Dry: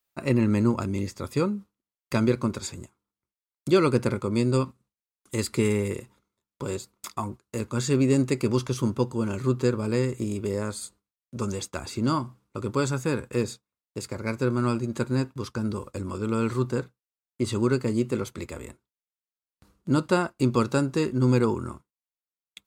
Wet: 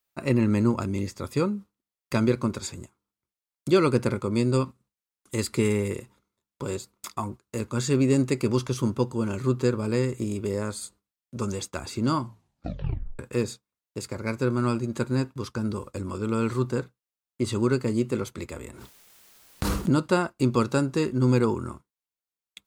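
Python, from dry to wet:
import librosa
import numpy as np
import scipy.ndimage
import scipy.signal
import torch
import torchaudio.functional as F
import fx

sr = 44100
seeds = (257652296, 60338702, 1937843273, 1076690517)

y = fx.pre_swell(x, sr, db_per_s=22.0, at=(18.65, 19.94))
y = fx.edit(y, sr, fx.tape_stop(start_s=12.22, length_s=0.97), tone=tone)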